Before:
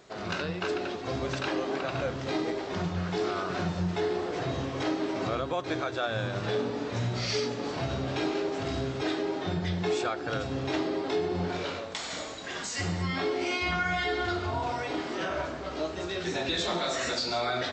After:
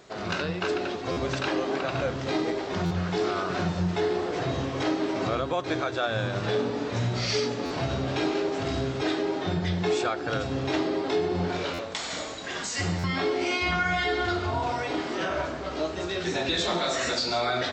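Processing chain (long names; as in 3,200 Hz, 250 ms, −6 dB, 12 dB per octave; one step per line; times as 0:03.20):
buffer that repeats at 0:01.11/0:02.85/0:07.65/0:11.73/0:12.98, samples 512, times 4
level +3 dB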